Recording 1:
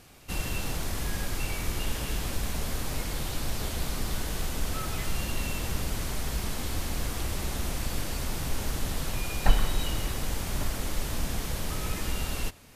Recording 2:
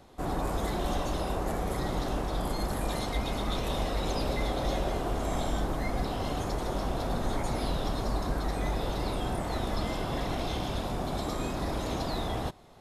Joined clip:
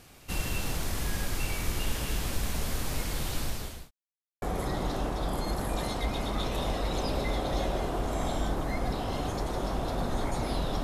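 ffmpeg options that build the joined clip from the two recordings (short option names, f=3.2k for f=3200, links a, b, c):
-filter_complex "[0:a]apad=whole_dur=10.83,atrim=end=10.83,asplit=2[a][b];[a]atrim=end=3.91,asetpts=PTS-STARTPTS,afade=t=out:st=3.4:d=0.51[c];[b]atrim=start=3.91:end=4.42,asetpts=PTS-STARTPTS,volume=0[d];[1:a]atrim=start=1.54:end=7.95,asetpts=PTS-STARTPTS,afade=t=in:d=0.004:c=hsin[e];[c][d][e]concat=n=3:v=0:a=1"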